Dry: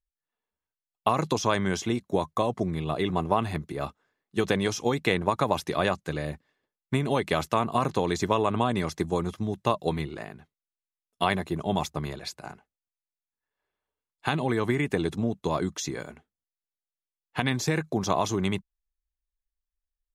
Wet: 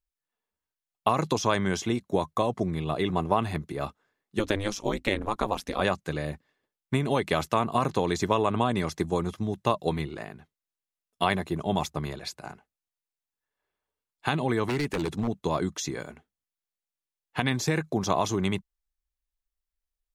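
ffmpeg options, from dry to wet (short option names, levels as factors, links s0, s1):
-filter_complex "[0:a]asettb=1/sr,asplit=3[s0][s1][s2];[s0]atrim=end=4.394[s3];[s1]atrim=start=4.39:end=5.81,asetpts=PTS-STARTPTS,afade=t=in:d=0.004:c=qsin,afade=t=out:st=1.416:d=0.004:c=qsin,aeval=exprs='val(0)*sin(2*PI*100*n/s)':c=same[s4];[s2]atrim=start=5.806[s5];[s3][s4]acrossfade=d=0.004:c1=hsin:c2=qsin[s6];[s6][s5]acrossfade=d=0.004:c1=qsin:c2=hsin,asettb=1/sr,asplit=3[s7][s8][s9];[s7]atrim=end=14.654[s10];[s8]atrim=start=14.65:end=15.28,asetpts=PTS-STARTPTS,afade=t=in:d=0.004:c=qsin,afade=t=out:st=0.626:d=0.004:c=qsin,aeval=exprs='0.0841*(abs(mod(val(0)/0.0841+3,4)-2)-1)':c=same[s11];[s9]atrim=start=15.276[s12];[s10][s11]acrossfade=d=0.004:c1=hsin:c2=qsin[s13];[s13][s12]acrossfade=d=0.004:c1=qsin:c2=hsin"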